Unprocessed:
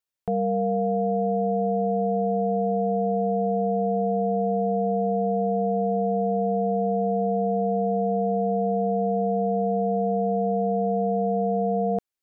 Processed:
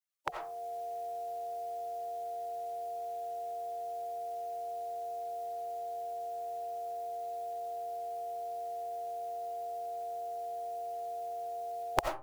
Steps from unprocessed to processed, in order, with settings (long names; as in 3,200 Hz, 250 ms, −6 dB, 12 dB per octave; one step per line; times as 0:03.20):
gate on every frequency bin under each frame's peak −15 dB weak
in parallel at −8.5 dB: comparator with hysteresis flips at −48.5 dBFS
on the sum: low-shelf EQ 480 Hz −11 dB
automatic gain control gain up to 8.5 dB
parametric band 250 Hz −12.5 dB 0.65 octaves
on a send at −4 dB: convolution reverb RT60 0.35 s, pre-delay 45 ms
on the sum: level +16.5 dB